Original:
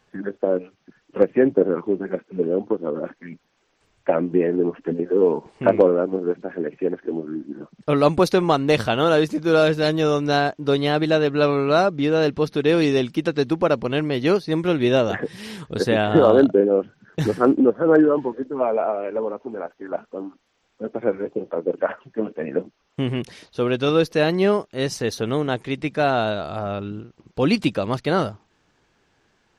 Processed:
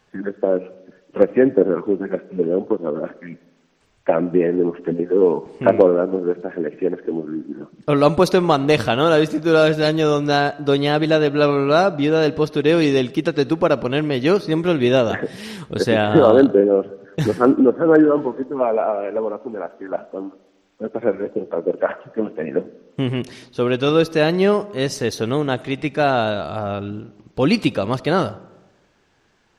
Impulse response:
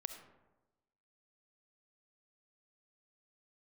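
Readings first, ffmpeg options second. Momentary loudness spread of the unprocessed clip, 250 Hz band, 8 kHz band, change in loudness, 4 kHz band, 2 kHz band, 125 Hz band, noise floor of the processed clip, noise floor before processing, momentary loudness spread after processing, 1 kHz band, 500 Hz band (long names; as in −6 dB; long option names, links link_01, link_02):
13 LU, +2.5 dB, can't be measured, +2.5 dB, +2.5 dB, +2.5 dB, +2.5 dB, −60 dBFS, −67 dBFS, 13 LU, +2.5 dB, +2.5 dB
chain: -filter_complex "[0:a]asplit=2[link_01][link_02];[1:a]atrim=start_sample=2205[link_03];[link_02][link_03]afir=irnorm=-1:irlink=0,volume=-7dB[link_04];[link_01][link_04]amix=inputs=2:normalize=0"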